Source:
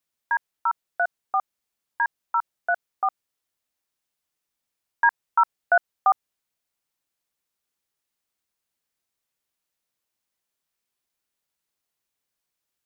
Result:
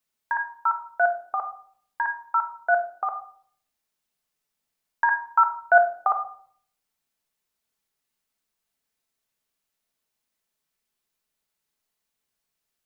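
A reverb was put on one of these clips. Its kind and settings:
rectangular room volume 770 cubic metres, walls furnished, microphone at 1.5 metres

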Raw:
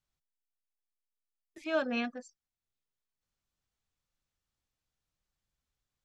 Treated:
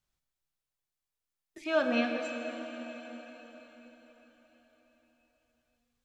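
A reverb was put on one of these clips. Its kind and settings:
dense smooth reverb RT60 4.9 s, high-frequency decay 1×, DRR 3 dB
level +2.5 dB

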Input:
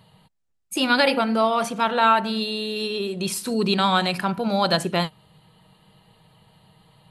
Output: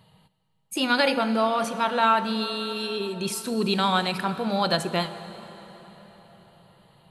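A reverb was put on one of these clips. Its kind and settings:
dense smooth reverb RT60 4.8 s, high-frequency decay 0.75×, DRR 11.5 dB
level −3 dB

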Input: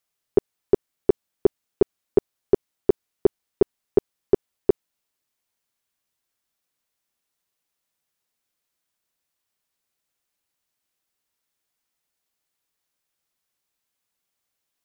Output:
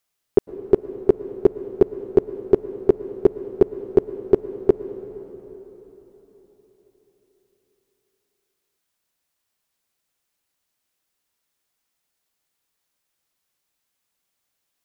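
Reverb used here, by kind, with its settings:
dense smooth reverb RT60 4.4 s, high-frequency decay 0.75×, pre-delay 95 ms, DRR 12.5 dB
level +3 dB

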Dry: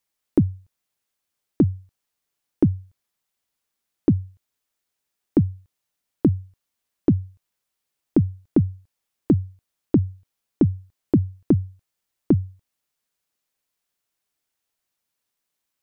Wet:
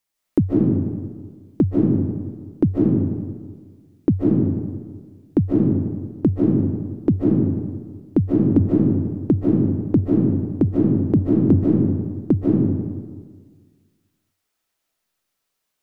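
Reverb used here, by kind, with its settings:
comb and all-pass reverb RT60 1.6 s, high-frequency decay 0.55×, pre-delay 110 ms, DRR −4.5 dB

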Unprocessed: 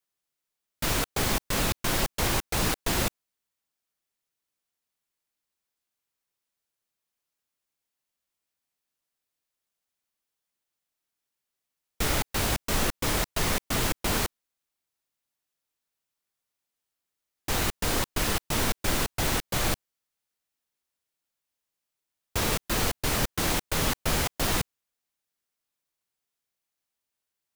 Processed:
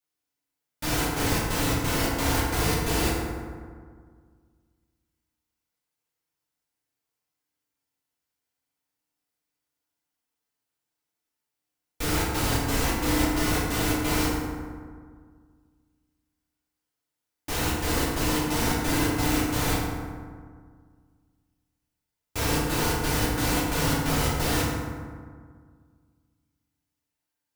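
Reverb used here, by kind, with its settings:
feedback delay network reverb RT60 1.8 s, low-frequency decay 1.25×, high-frequency decay 0.45×, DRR −7 dB
level −6 dB

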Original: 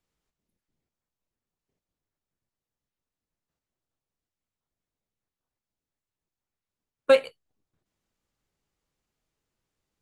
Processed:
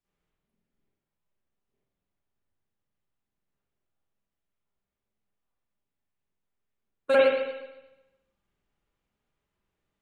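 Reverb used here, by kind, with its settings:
spring reverb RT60 1 s, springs 46/51 ms, chirp 75 ms, DRR −9.5 dB
level −8 dB

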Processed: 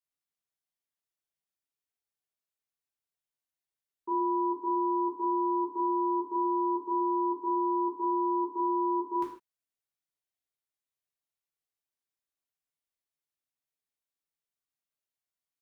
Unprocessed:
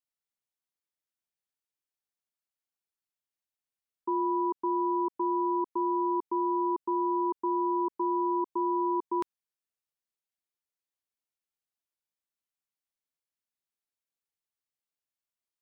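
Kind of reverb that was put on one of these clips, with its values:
reverb whose tail is shaped and stops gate 180 ms falling, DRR −4 dB
level −7.5 dB

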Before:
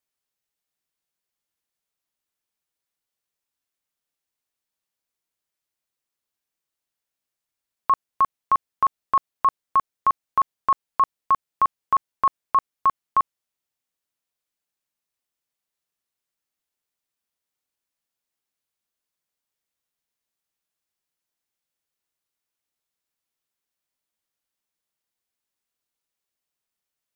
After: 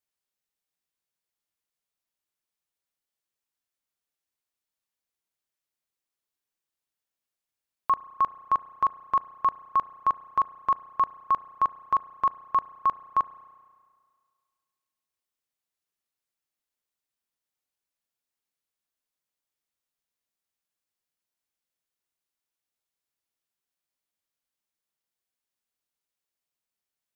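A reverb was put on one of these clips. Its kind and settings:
spring reverb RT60 1.9 s, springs 33 ms, chirp 25 ms, DRR 16 dB
level −4 dB

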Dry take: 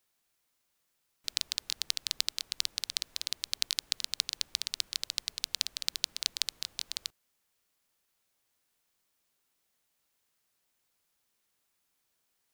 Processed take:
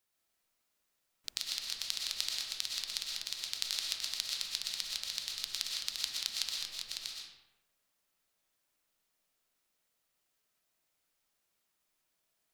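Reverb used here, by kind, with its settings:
comb and all-pass reverb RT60 1 s, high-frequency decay 0.65×, pre-delay 80 ms, DRR −2 dB
level −5.5 dB

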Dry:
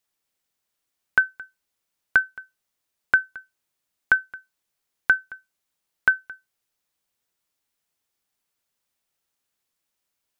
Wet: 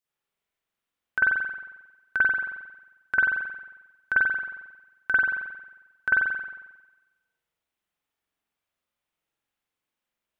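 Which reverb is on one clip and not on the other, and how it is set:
spring reverb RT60 1.1 s, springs 45 ms, chirp 75 ms, DRR −9 dB
level −10.5 dB

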